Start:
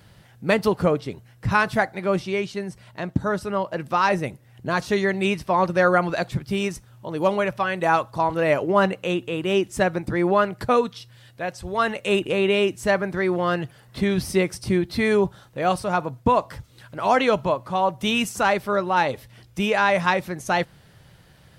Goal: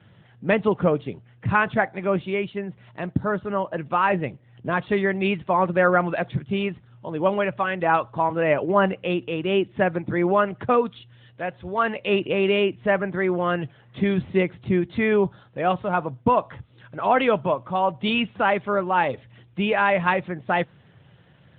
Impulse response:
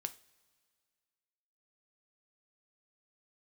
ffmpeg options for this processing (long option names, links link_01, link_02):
-ar 8000 -c:a libopencore_amrnb -b:a 12200